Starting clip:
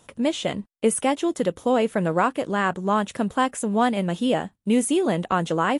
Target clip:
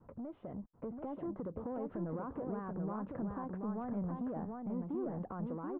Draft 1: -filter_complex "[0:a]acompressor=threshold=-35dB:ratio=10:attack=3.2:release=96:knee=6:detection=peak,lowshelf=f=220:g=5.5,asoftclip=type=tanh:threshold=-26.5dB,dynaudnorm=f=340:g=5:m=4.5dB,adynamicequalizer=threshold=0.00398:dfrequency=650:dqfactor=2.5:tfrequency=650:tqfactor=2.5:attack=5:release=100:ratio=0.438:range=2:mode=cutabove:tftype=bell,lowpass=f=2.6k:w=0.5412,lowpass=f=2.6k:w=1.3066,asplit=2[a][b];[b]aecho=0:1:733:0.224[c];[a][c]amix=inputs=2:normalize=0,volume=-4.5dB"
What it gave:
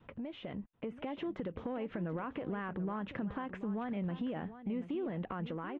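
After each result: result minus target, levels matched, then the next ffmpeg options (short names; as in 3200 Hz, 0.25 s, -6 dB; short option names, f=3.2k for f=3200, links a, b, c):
2000 Hz band +10.5 dB; soft clip: distortion -11 dB; echo-to-direct -9 dB
-filter_complex "[0:a]acompressor=threshold=-35dB:ratio=10:attack=3.2:release=96:knee=6:detection=peak,lowshelf=f=220:g=5.5,asoftclip=type=tanh:threshold=-26.5dB,dynaudnorm=f=340:g=5:m=4.5dB,adynamicequalizer=threshold=0.00398:dfrequency=650:dqfactor=2.5:tfrequency=650:tqfactor=2.5:attack=5:release=100:ratio=0.438:range=2:mode=cutabove:tftype=bell,lowpass=f=1.2k:w=0.5412,lowpass=f=1.2k:w=1.3066,asplit=2[a][b];[b]aecho=0:1:733:0.224[c];[a][c]amix=inputs=2:normalize=0,volume=-4.5dB"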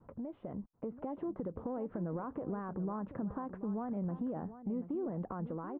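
soft clip: distortion -11 dB; echo-to-direct -9 dB
-filter_complex "[0:a]acompressor=threshold=-35dB:ratio=10:attack=3.2:release=96:knee=6:detection=peak,lowshelf=f=220:g=5.5,asoftclip=type=tanh:threshold=-34dB,dynaudnorm=f=340:g=5:m=4.5dB,adynamicequalizer=threshold=0.00398:dfrequency=650:dqfactor=2.5:tfrequency=650:tqfactor=2.5:attack=5:release=100:ratio=0.438:range=2:mode=cutabove:tftype=bell,lowpass=f=1.2k:w=0.5412,lowpass=f=1.2k:w=1.3066,asplit=2[a][b];[b]aecho=0:1:733:0.224[c];[a][c]amix=inputs=2:normalize=0,volume=-4.5dB"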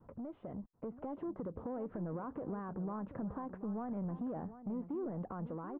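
echo-to-direct -9 dB
-filter_complex "[0:a]acompressor=threshold=-35dB:ratio=10:attack=3.2:release=96:knee=6:detection=peak,lowshelf=f=220:g=5.5,asoftclip=type=tanh:threshold=-34dB,dynaudnorm=f=340:g=5:m=4.5dB,adynamicequalizer=threshold=0.00398:dfrequency=650:dqfactor=2.5:tfrequency=650:tqfactor=2.5:attack=5:release=100:ratio=0.438:range=2:mode=cutabove:tftype=bell,lowpass=f=1.2k:w=0.5412,lowpass=f=1.2k:w=1.3066,asplit=2[a][b];[b]aecho=0:1:733:0.631[c];[a][c]amix=inputs=2:normalize=0,volume=-4.5dB"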